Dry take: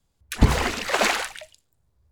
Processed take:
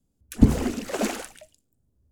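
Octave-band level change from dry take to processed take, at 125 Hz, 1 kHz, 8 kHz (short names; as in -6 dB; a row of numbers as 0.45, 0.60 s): -1.0, -10.0, -5.5 dB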